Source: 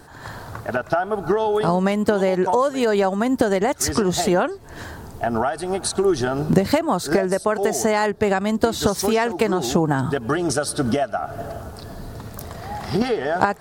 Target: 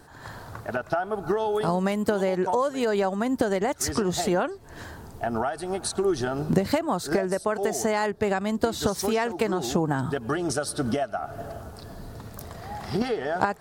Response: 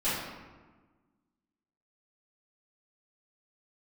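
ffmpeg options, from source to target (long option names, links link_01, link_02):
-filter_complex "[0:a]asettb=1/sr,asplit=3[link_01][link_02][link_03];[link_01]atrim=end=1.284[link_04];[link_02]atrim=start=1.28:end=2.24,asetpts=PTS-STARTPTS,afade=type=in:duration=0.004:curve=qsin,afade=type=out:start_time=0.956:duration=0.004:curve=qsin,highshelf=frequency=9900:gain=7.5[link_05];[link_03]atrim=start=2.236[link_06];[link_04][link_05]acrossfade=duration=0.004:curve1=hsin:curve2=qsin[link_07];[link_07][link_06]acrossfade=duration=0.004:curve1=qsin:curve2=hsin,volume=-5.5dB"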